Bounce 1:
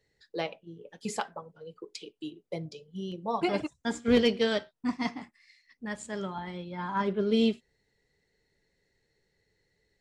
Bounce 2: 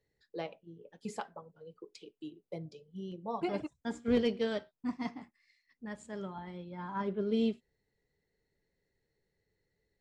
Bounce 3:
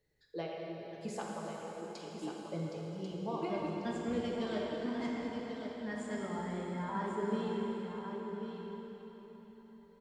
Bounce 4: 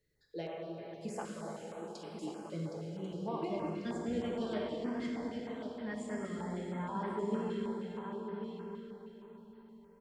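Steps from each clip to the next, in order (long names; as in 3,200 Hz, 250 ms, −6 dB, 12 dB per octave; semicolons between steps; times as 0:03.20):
tilt shelving filter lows +3.5 dB, about 1,400 Hz; level −8.5 dB
downward compressor, threshold −36 dBFS, peak gain reduction 12 dB; single-tap delay 1,091 ms −8 dB; dense smooth reverb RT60 4.5 s, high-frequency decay 0.85×, DRR −3 dB
notch on a step sequencer 6.4 Hz 830–6,800 Hz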